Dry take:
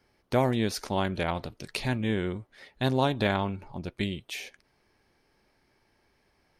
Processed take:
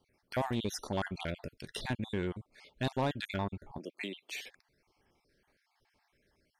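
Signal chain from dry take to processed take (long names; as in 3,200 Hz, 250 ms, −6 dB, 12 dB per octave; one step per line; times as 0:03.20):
time-frequency cells dropped at random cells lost 40%
0:03.78–0:04.32: high-pass filter 250 Hz 24 dB per octave
soft clipping −21 dBFS, distortion −13 dB
level −3 dB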